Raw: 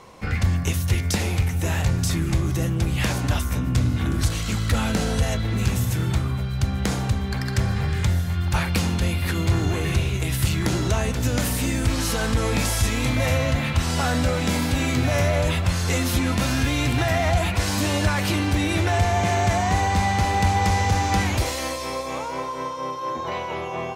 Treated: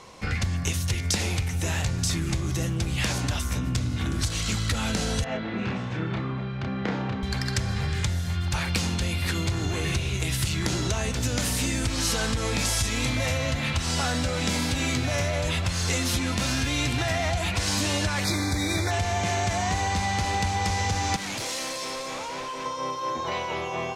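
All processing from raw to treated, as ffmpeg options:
-filter_complex "[0:a]asettb=1/sr,asplit=3[s0][s1][s2];[s0]atrim=end=5.244[s3];[s1]atrim=start=5.24:end=7.23,asetpts=PTS-STARTPTS,afade=t=in:d=0.004:c=qsin,afade=t=out:st=1.986:d=0.004:c=qsin,highpass=200,lowpass=2400,aemphasis=mode=reproduction:type=50fm,asplit=2[s4][s5];[s5]adelay=31,volume=0.708[s6];[s4][s6]amix=inputs=2:normalize=0,atrim=end_sample=87759[s7];[s2]atrim=start=7.226[s8];[s3][s7]acrossfade=d=0.004:c1=hsin:c2=qsin[s9];[s9][s8]acrossfade=d=0.004:c1=qsin:c2=hsin,asettb=1/sr,asplit=3[s10][s11][s12];[s10]atrim=end=18.244[s13];[s11]atrim=start=18.24:end=18.91,asetpts=PTS-STARTPTS,afade=t=in:d=0.004:c=qsin,afade=t=out:st=0.666:d=0.004:c=qsin,acrusher=bits=4:mix=0:aa=0.5,asuperstop=centerf=2900:order=12:qfactor=2.8[s14];[s12]atrim=start=18.906[s15];[s13][s14]acrossfade=d=0.004:c1=hsin:c2=qsin[s16];[s16][s15]acrossfade=d=0.004:c1=qsin:c2=hsin,asettb=1/sr,asplit=3[s17][s18][s19];[s17]atrim=end=21.164[s20];[s18]atrim=start=21.16:end=22.66,asetpts=PTS-STARTPTS,afade=t=in:d=0.004:c=qsin,afade=t=out:st=1.496:d=0.004:c=qsin,highpass=f=130:w=0.5412,highpass=f=130:w=1.3066,volume=33.5,asoftclip=hard,volume=0.0299[s21];[s19]atrim=start=22.656[s22];[s20][s21]acrossfade=d=0.004:c1=hsin:c2=qsin[s23];[s23][s22]acrossfade=d=0.004:c1=qsin:c2=hsin,acompressor=threshold=0.0891:ratio=6,lowpass=6000,aemphasis=mode=production:type=75kf,volume=0.794"

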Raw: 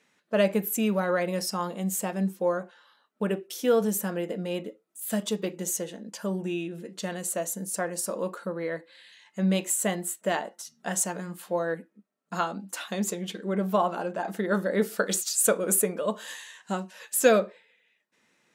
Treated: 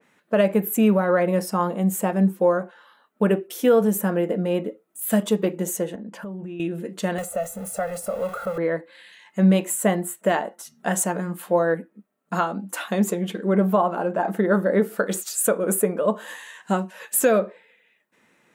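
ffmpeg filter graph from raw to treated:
-filter_complex "[0:a]asettb=1/sr,asplit=3[s0][s1][s2];[s0]atrim=end=5.954[s3];[s1]atrim=start=5.95:end=6.6,asetpts=PTS-STARTPTS,afade=t=in:d=0.004:c=qsin,afade=t=out:st=0.646:d=0.004:c=qsin,bass=f=250:g=5,treble=f=4000:g=-12,acompressor=threshold=0.00891:ratio=5:attack=3.2:release=140:knee=1:detection=peak[s4];[s2]atrim=start=6.596[s5];[s3][s4]acrossfade=d=0.004:c1=hsin:c2=qsin[s6];[s6][s5]acrossfade=d=0.004:c1=qsin:c2=hsin,asettb=1/sr,asplit=3[s7][s8][s9];[s7]atrim=end=7.184[s10];[s8]atrim=start=7.18:end=8.58,asetpts=PTS-STARTPTS,afade=t=in:d=0.004:c=qsin,afade=t=out:st=1.396:d=0.004:c=qsin,aeval=exprs='val(0)+0.5*0.0126*sgn(val(0))':c=same,aecho=1:1:1.5:0.91,atrim=end_sample=61740,acrossover=split=120|390|950[s11][s12][s13][s14];[s11]acompressor=threshold=0.00112:ratio=3[s15];[s12]acompressor=threshold=0.00355:ratio=3[s16];[s13]acompressor=threshold=0.0141:ratio=3[s17];[s14]acompressor=threshold=0.00891:ratio=3[s18];[s15][s16][s17][s18]amix=inputs=4:normalize=0[s19];[s9]atrim=start=8.576[s20];[s10][s19]acrossfade=d=0.004:c1=hsin:c2=qsin[s21];[s21][s20]acrossfade=d=0.004:c1=qsin:c2=hsin,equalizer=f=5100:t=o:w=1.4:g=-9.5,alimiter=limit=0.141:level=0:latency=1:release=368,adynamicequalizer=threshold=0.00447:dfrequency=1900:dqfactor=0.7:tfrequency=1900:tqfactor=0.7:attack=5:release=100:ratio=0.375:range=3:mode=cutabove:tftype=highshelf,volume=2.66"

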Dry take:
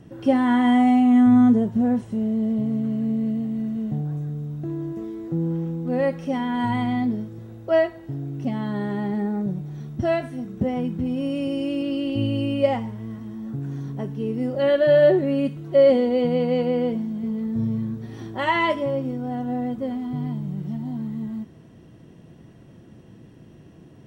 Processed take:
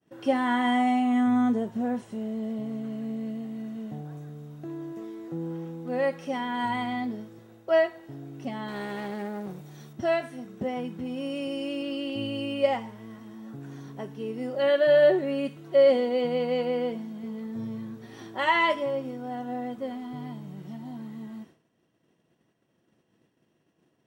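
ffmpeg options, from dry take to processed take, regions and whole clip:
-filter_complex "[0:a]asettb=1/sr,asplit=3[s0][s1][s2];[s0]atrim=end=8.684[s3];[s1]atrim=start=8.68:end=9.93,asetpts=PTS-STARTPTS,afade=t=in:d=0.004:c=qsin,afade=t=out:st=1.246:d=0.004:c=qsin,highshelf=f=4100:g=9,aeval=exprs='clip(val(0),-1,0.0376)':c=same[s4];[s2]atrim=start=9.926[s5];[s3][s4]acrossfade=d=0.004:c1=hsin:c2=qsin[s6];[s6][s5]acrossfade=d=0.004:c1=qsin:c2=hsin,highpass=f=620:p=1,agate=range=0.0224:threshold=0.00501:ratio=3:detection=peak"

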